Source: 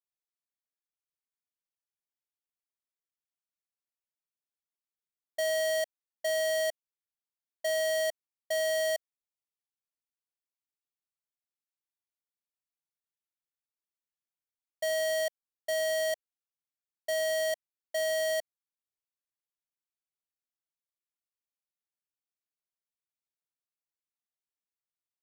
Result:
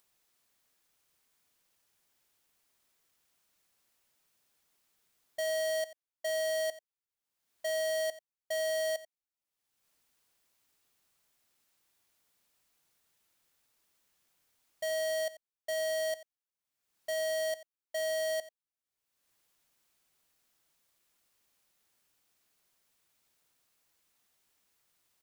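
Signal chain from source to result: upward compressor, threshold -52 dBFS; on a send: delay 88 ms -17 dB; on the sum: trim -3.5 dB

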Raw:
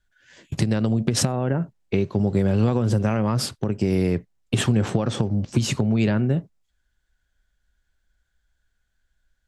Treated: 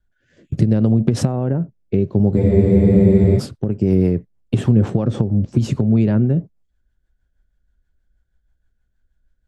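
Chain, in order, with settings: rotary cabinet horn 0.7 Hz, later 6.3 Hz, at 2.51 s; tilt shelf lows +7.5 dB, about 1.1 kHz; spectral freeze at 2.40 s, 0.97 s

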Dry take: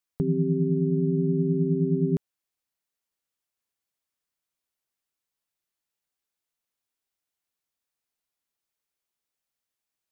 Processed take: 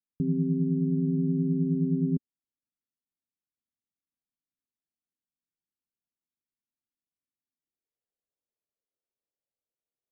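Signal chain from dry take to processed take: low-pass sweep 260 Hz -> 530 Hz, 7.53–8.04 s; trim -6.5 dB

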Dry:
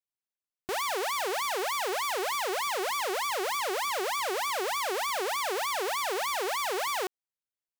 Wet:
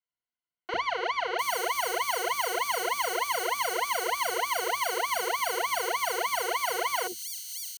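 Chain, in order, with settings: rippled EQ curve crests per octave 1.9, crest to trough 15 dB; three bands offset in time mids, lows, highs 50/700 ms, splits 410/4100 Hz

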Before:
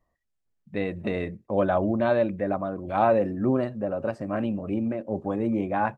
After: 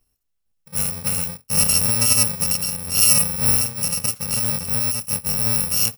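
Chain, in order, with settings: bit-reversed sample order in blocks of 128 samples; trim +5.5 dB

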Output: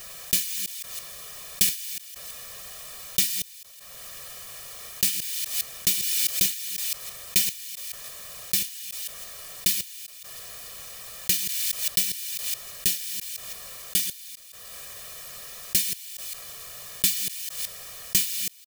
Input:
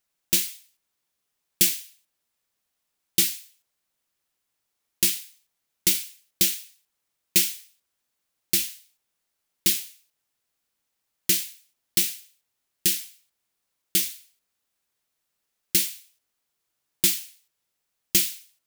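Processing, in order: chunks repeated in reverse 165 ms, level -9 dB; comb 1.7 ms, depth 91%; swell ahead of each attack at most 22 dB/s; trim -4.5 dB

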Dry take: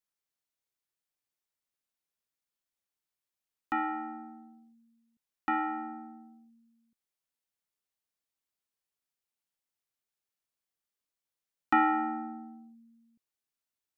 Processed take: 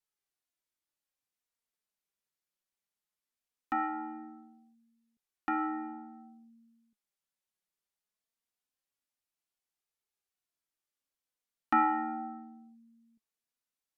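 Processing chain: low-pass that closes with the level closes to 2 kHz, closed at -32 dBFS; flange 0.2 Hz, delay 2.2 ms, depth 3.3 ms, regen +57%; trim +2.5 dB

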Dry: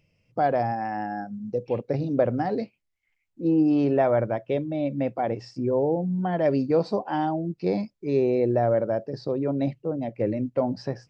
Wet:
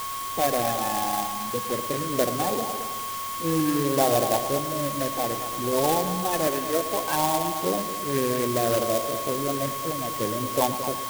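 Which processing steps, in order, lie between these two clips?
coarse spectral quantiser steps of 30 dB; 6.47–7.07 s: high-pass 310 Hz 12 dB/octave; multi-head delay 111 ms, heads first and second, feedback 48%, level -13 dB; LFO low-pass sine 0.63 Hz 860–2700 Hz; whistle 3.2 kHz -32 dBFS; tilt EQ +2 dB/octave; sample-rate reducer 4.3 kHz, jitter 0%; sampling jitter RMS 0.07 ms

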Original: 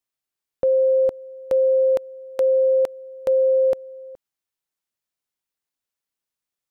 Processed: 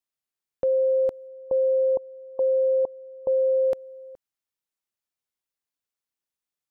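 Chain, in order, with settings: 1.27–3.61 s: brick-wall FIR low-pass 1.1 kHz; trim -4 dB

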